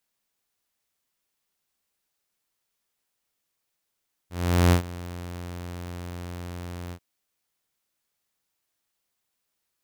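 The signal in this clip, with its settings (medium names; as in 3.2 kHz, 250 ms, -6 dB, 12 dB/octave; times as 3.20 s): ADSR saw 87.9 Hz, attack 417 ms, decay 101 ms, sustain -19.5 dB, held 2.62 s, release 69 ms -12 dBFS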